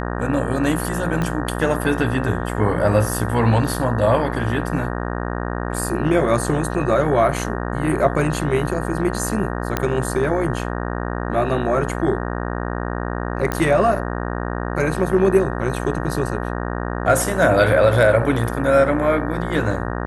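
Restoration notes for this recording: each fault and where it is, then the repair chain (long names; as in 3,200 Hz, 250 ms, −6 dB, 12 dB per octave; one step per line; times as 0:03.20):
mains buzz 60 Hz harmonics 31 −25 dBFS
0:01.22: click −11 dBFS
0:09.77: click −5 dBFS
0:13.52: click −8 dBFS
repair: click removal
hum removal 60 Hz, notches 31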